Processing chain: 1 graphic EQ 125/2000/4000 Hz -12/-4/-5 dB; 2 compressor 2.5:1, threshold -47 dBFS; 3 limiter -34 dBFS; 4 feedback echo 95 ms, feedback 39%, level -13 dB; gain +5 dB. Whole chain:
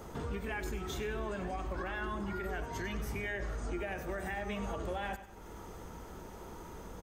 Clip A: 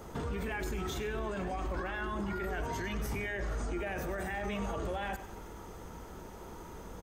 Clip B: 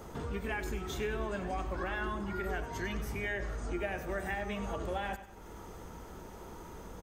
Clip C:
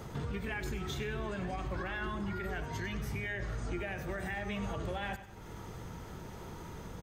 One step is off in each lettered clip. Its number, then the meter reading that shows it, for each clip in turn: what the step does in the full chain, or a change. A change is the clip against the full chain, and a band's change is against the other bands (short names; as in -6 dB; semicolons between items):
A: 2, mean gain reduction 11.0 dB; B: 3, crest factor change +3.0 dB; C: 1, momentary loudness spread change -2 LU